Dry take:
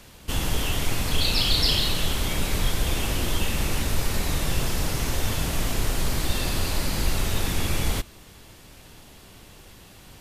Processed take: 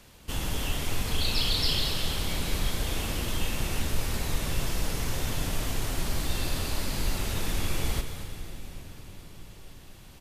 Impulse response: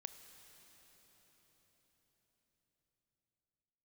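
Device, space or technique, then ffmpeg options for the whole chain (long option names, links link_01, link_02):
cave: -filter_complex "[0:a]aecho=1:1:228:0.251[link_01];[1:a]atrim=start_sample=2205[link_02];[link_01][link_02]afir=irnorm=-1:irlink=0"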